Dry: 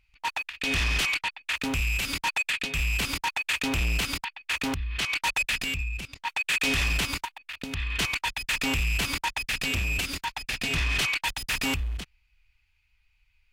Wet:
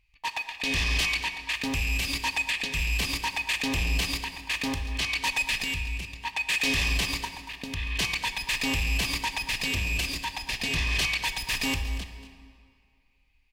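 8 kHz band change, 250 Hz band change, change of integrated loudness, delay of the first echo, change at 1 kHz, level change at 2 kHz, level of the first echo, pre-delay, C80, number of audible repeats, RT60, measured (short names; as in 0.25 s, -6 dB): 0.0 dB, -0.5 dB, 0.0 dB, 0.235 s, -1.5 dB, -0.5 dB, -14.0 dB, 8 ms, 9.5 dB, 1, 2.2 s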